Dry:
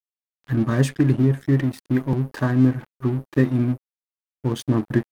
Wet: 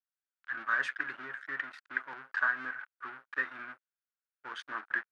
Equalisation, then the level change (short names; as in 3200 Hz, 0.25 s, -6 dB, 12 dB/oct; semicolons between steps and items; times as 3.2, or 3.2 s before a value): ladder band-pass 1600 Hz, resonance 70%; +7.5 dB